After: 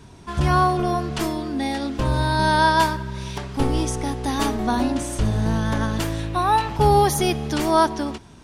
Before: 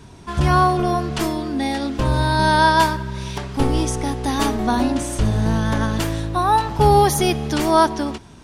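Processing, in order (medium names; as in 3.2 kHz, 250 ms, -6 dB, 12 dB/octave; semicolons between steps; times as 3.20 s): 6.19–6.77 s: peaking EQ 2.5 kHz +7.5 dB 0.77 oct; trim -2.5 dB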